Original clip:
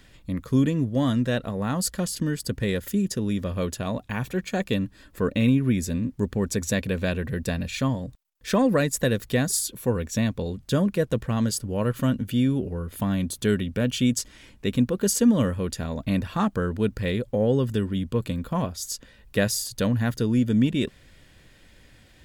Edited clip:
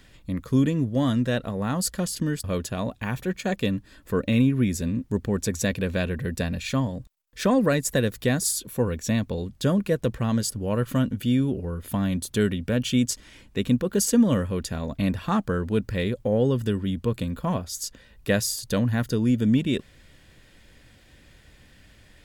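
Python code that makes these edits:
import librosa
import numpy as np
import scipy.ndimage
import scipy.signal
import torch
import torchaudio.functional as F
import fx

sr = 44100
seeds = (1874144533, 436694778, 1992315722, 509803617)

y = fx.edit(x, sr, fx.cut(start_s=2.44, length_s=1.08), tone=tone)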